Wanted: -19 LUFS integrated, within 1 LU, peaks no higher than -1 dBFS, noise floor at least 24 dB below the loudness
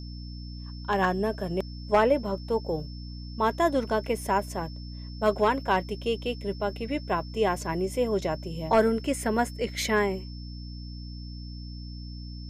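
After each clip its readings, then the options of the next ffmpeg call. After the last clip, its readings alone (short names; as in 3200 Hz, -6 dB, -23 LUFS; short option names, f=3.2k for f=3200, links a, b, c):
hum 60 Hz; harmonics up to 300 Hz; hum level -36 dBFS; steady tone 5300 Hz; tone level -48 dBFS; loudness -27.5 LUFS; peak -12.0 dBFS; loudness target -19.0 LUFS
-> -af "bandreject=f=60:t=h:w=6,bandreject=f=120:t=h:w=6,bandreject=f=180:t=h:w=6,bandreject=f=240:t=h:w=6,bandreject=f=300:t=h:w=6"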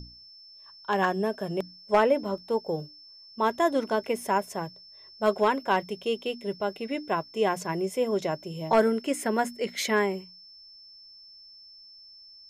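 hum none; steady tone 5300 Hz; tone level -48 dBFS
-> -af "bandreject=f=5.3k:w=30"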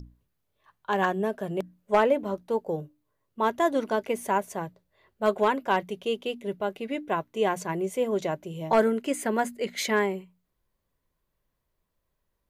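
steady tone none; loudness -27.5 LUFS; peak -12.0 dBFS; loudness target -19.0 LUFS
-> -af "volume=8.5dB"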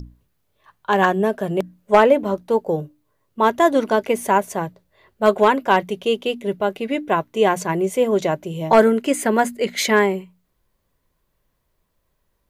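loudness -19.0 LUFS; peak -3.5 dBFS; noise floor -71 dBFS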